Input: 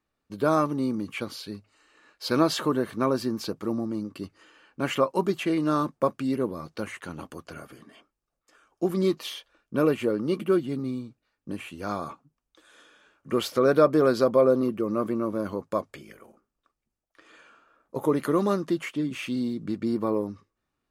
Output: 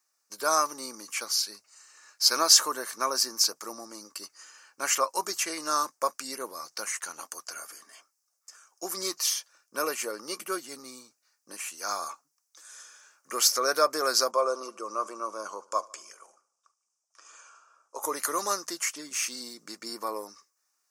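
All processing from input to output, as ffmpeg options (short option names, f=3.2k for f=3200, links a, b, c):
-filter_complex "[0:a]asettb=1/sr,asplit=3[a][b][c];[a]atrim=end=14.314[d];[b]atrim=start=14.31:end=18.03,asetpts=PTS-STARTPTS,afade=t=in:d=0.004:c=qsin,afade=t=out:st=3.716:d=0.004:c=qsin,highpass=f=170:w=0.5412,highpass=f=170:w=1.3066,equalizer=f=250:t=q:w=4:g=-8,equalizer=f=1.1k:t=q:w=4:g=4,equalizer=f=1.8k:t=q:w=4:g=-9,equalizer=f=4.2k:t=q:w=4:g=-9,lowpass=f=8.4k:w=0.5412,lowpass=f=8.4k:w=1.3066,bandreject=f=2.1k:w=10,aecho=1:1:74|148|222|296:0.0708|0.0425|0.0255|0.0153,atrim=end_sample=164052[e];[c]atrim=start=18.026[f];[d][e]acrossfade=d=0.004:c1=hsin:c2=qsin[g];[g][f]acrossfade=d=0.004:c1=qsin:c2=hsin,highpass=1k,highshelf=f=4.4k:t=q:w=3:g=9.5,volume=4dB"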